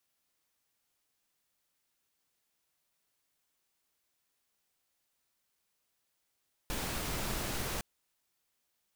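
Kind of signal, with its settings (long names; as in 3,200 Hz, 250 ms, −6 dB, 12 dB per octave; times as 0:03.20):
noise pink, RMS −36 dBFS 1.11 s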